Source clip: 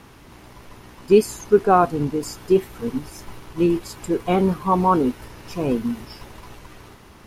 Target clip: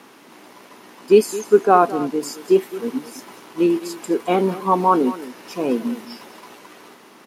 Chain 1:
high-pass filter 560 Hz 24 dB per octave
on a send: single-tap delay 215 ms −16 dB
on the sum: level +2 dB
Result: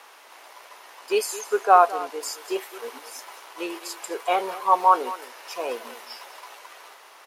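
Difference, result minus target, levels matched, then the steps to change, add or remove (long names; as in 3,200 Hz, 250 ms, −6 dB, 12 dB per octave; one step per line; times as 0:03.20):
250 Hz band −13.5 dB
change: high-pass filter 220 Hz 24 dB per octave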